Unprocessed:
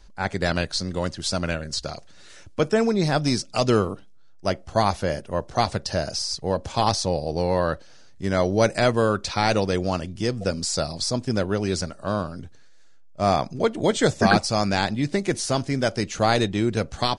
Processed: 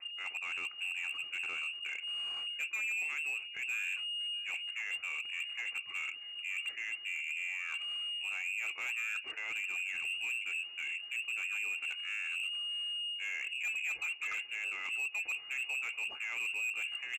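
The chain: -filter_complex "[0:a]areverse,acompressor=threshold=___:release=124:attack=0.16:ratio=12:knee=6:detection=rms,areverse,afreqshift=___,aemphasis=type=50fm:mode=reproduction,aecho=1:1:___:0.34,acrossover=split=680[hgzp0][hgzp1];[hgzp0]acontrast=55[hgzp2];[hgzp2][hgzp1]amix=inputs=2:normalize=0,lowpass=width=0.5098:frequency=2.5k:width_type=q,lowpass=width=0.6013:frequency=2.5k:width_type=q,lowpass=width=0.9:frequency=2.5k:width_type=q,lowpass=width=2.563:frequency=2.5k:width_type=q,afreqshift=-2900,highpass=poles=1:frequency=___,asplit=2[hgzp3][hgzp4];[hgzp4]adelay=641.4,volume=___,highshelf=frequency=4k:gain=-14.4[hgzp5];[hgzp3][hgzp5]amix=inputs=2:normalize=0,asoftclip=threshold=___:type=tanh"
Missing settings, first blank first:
-32dB, 46, 2.4, 51, -19dB, -31.5dB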